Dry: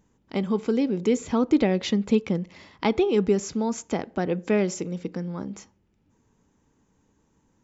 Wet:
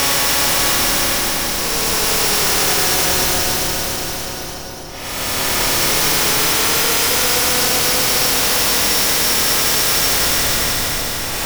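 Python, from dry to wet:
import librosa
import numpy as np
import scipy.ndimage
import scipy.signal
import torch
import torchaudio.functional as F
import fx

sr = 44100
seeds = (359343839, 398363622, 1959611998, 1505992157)

y = np.r_[np.sort(x[:len(x) // 8 * 8].reshape(-1, 8), axis=1).ravel(), x[len(x) // 8 * 8:]]
y = scipy.signal.sosfilt(scipy.signal.butter(4, 750.0, 'highpass', fs=sr, output='sos'), y)
y = fx.dynamic_eq(y, sr, hz=6100.0, q=1.8, threshold_db=-50.0, ratio=4.0, max_db=7)
y = fx.level_steps(y, sr, step_db=13)
y = fx.leveller(y, sr, passes=5)
y = fx.stretch_vocoder(y, sr, factor=1.5)
y = fx.schmitt(y, sr, flips_db=-24.0)
y = fx.paulstretch(y, sr, seeds[0], factor=16.0, window_s=0.1, from_s=1.23)
y = fx.doubler(y, sr, ms=26.0, db=-2.5)
y = fx.echo_split(y, sr, split_hz=1000.0, low_ms=396, high_ms=290, feedback_pct=52, wet_db=-6.0)
y = fx.spectral_comp(y, sr, ratio=2.0)
y = F.gain(torch.from_numpy(y), 7.0).numpy()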